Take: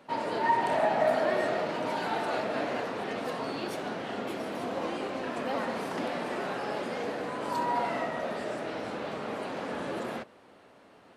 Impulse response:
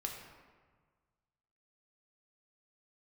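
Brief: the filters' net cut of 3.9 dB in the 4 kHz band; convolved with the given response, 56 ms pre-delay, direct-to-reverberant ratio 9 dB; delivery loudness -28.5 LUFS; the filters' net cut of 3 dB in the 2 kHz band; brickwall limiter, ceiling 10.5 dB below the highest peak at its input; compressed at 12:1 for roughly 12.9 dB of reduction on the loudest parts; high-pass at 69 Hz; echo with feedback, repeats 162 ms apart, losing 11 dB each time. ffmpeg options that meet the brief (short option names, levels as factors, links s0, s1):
-filter_complex "[0:a]highpass=69,equalizer=f=2000:t=o:g=-3,equalizer=f=4000:t=o:g=-4,acompressor=threshold=0.02:ratio=12,alimiter=level_in=3.76:limit=0.0631:level=0:latency=1,volume=0.266,aecho=1:1:162|324|486:0.282|0.0789|0.0221,asplit=2[s0][s1];[1:a]atrim=start_sample=2205,adelay=56[s2];[s1][s2]afir=irnorm=-1:irlink=0,volume=0.355[s3];[s0][s3]amix=inputs=2:normalize=0,volume=5.31"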